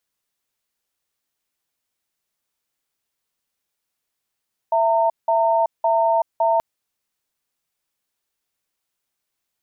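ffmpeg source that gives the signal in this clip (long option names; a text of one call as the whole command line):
ffmpeg -f lavfi -i "aevalsrc='0.133*(sin(2*PI*664*t)+sin(2*PI*913*t))*clip(min(mod(t,0.56),0.38-mod(t,0.56))/0.005,0,1)':duration=1.88:sample_rate=44100" out.wav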